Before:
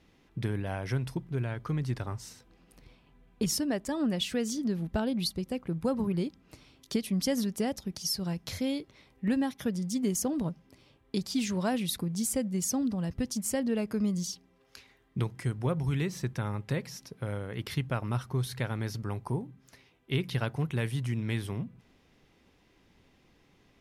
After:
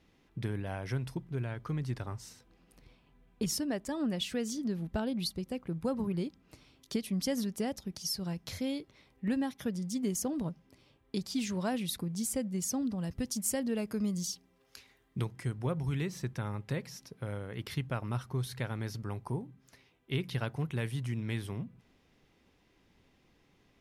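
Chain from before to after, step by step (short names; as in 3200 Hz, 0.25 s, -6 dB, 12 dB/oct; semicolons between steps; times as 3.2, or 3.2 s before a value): 13.01–15.25 high shelf 5500 Hz +6.5 dB; gain -3.5 dB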